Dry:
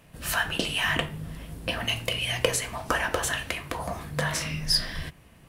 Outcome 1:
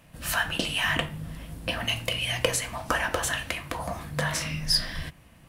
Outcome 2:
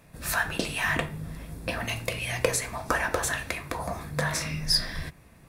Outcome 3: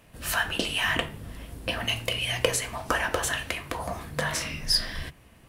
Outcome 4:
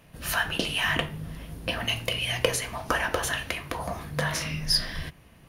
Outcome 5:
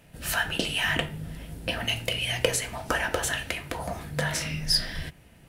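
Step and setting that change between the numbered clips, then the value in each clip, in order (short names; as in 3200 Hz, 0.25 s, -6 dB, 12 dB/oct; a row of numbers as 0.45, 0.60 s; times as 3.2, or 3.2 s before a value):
notch, frequency: 410, 3000, 160, 7800, 1100 Hz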